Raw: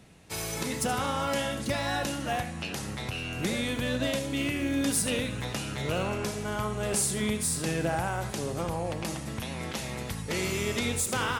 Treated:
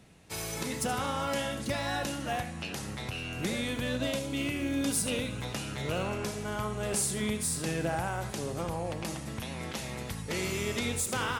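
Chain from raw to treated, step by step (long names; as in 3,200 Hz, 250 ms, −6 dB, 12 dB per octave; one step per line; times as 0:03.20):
0:03.97–0:05.54: notch filter 1,800 Hz, Q 8.1
level −2.5 dB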